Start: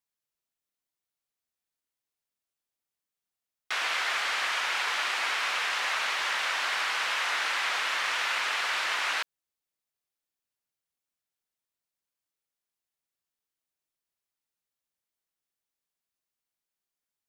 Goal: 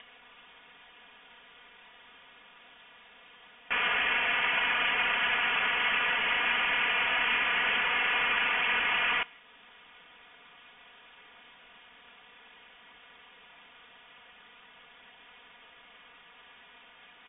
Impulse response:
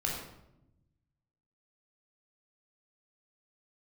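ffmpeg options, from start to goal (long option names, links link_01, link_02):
-filter_complex "[0:a]aeval=exprs='val(0)+0.5*0.0075*sgn(val(0))':channel_layout=same,highpass=400,aecho=1:1:4.1:0.84,asplit=2[link_01][link_02];[1:a]atrim=start_sample=2205[link_03];[link_02][link_03]afir=irnorm=-1:irlink=0,volume=-23.5dB[link_04];[link_01][link_04]amix=inputs=2:normalize=0,acompressor=mode=upward:threshold=-39dB:ratio=2.5,lowpass=frequency=3300:width_type=q:width=0.5098,lowpass=frequency=3300:width_type=q:width=0.6013,lowpass=frequency=3300:width_type=q:width=0.9,lowpass=frequency=3300:width_type=q:width=2.563,afreqshift=-3900,volume=-1.5dB"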